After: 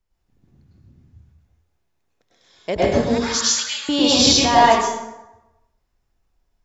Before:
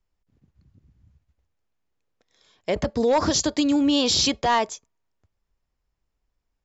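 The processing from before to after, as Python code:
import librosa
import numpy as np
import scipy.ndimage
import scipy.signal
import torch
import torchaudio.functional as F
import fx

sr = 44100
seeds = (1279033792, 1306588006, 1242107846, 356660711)

y = fx.highpass(x, sr, hz=1400.0, slope=24, at=(3.02, 3.89))
y = fx.rev_plate(y, sr, seeds[0], rt60_s=0.96, hf_ratio=0.65, predelay_ms=90, drr_db=-7.0)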